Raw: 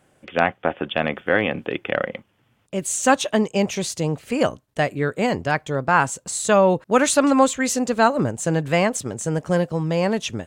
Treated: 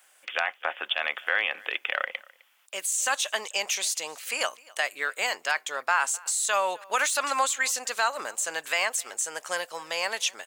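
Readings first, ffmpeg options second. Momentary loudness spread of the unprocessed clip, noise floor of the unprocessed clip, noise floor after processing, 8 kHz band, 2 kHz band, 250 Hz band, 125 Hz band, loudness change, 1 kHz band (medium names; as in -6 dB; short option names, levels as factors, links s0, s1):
9 LU, -65 dBFS, -61 dBFS, -0.5 dB, -1.5 dB, -29.5 dB, under -40 dB, -6.0 dB, -7.0 dB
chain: -af "highpass=1000,deesser=0.4,aemphasis=mode=production:type=riaa,alimiter=limit=0.282:level=0:latency=1:release=12,acompressor=threshold=0.0447:ratio=1.5,highshelf=f=6600:g=-10,aecho=1:1:258:0.0631,volume=1.26"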